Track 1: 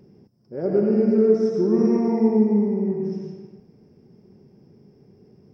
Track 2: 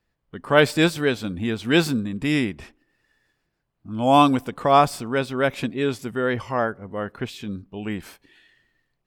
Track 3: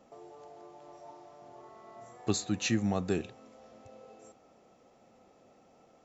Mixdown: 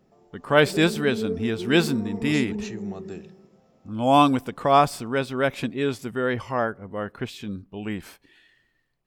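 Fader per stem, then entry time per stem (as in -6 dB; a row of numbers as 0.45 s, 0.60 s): -12.5 dB, -1.5 dB, -8.0 dB; 0.00 s, 0.00 s, 0.00 s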